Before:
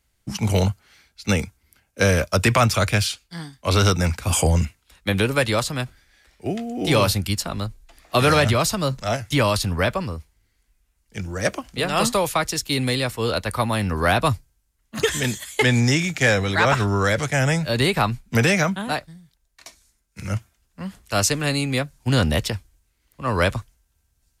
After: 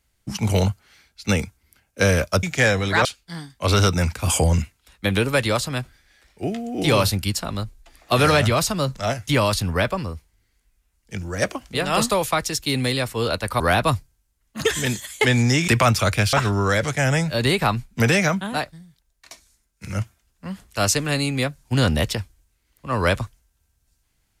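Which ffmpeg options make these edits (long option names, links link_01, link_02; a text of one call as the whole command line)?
ffmpeg -i in.wav -filter_complex "[0:a]asplit=6[link_01][link_02][link_03][link_04][link_05][link_06];[link_01]atrim=end=2.432[link_07];[link_02]atrim=start=16.058:end=16.682[link_08];[link_03]atrim=start=3.078:end=13.632[link_09];[link_04]atrim=start=13.978:end=16.062[link_10];[link_05]atrim=start=2.428:end=3.082[link_11];[link_06]atrim=start=16.678[link_12];[link_07][link_08]acrossfade=duration=0.004:curve1=hsin:curve2=hsin[link_13];[link_13][link_09]acrossfade=duration=0.004:curve1=hsin:curve2=hsin[link_14];[link_14][link_10]acrossfade=duration=0.004:curve1=hsin:curve2=hsin[link_15];[link_15][link_11]acrossfade=duration=0.004:curve1=hsin:curve2=hsin[link_16];[link_16][link_12]acrossfade=duration=0.004:curve1=hsin:curve2=hsin" out.wav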